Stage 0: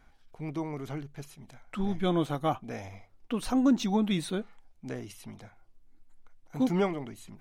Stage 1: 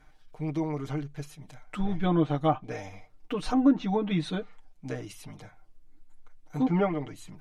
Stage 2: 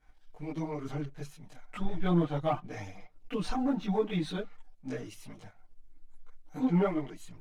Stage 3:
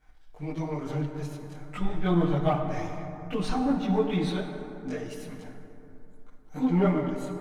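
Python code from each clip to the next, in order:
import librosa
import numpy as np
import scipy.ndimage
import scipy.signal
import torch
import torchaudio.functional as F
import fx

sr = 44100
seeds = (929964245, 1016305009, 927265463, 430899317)

y1 = fx.env_lowpass_down(x, sr, base_hz=2100.0, full_db=-22.5)
y1 = y1 + 0.84 * np.pad(y1, (int(6.6 * sr / 1000.0), 0))[:len(y1)]
y2 = fx.leveller(y1, sr, passes=1)
y2 = fx.chorus_voices(y2, sr, voices=4, hz=1.2, base_ms=20, depth_ms=3.0, mix_pct=65)
y2 = y2 * 10.0 ** (-4.0 / 20.0)
y3 = fx.rev_plate(y2, sr, seeds[0], rt60_s=3.1, hf_ratio=0.4, predelay_ms=0, drr_db=4.0)
y3 = y3 * 10.0 ** (3.0 / 20.0)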